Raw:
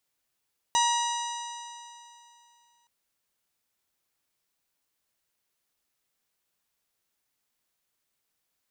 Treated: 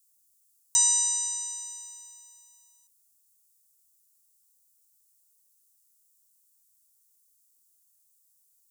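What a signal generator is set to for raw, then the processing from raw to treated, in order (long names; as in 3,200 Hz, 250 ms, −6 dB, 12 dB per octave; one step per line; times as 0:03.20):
stiff-string partials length 2.12 s, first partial 943 Hz, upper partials −11.5/−9.5/−8.5/−18/−5.5/−13/−13.5 dB, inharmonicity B 0.0035, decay 2.72 s, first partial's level −21.5 dB
drawn EQ curve 100 Hz 0 dB, 700 Hz −22 dB, 1,400 Hz −9 dB, 2,200 Hz −18 dB, 7,900 Hz +14 dB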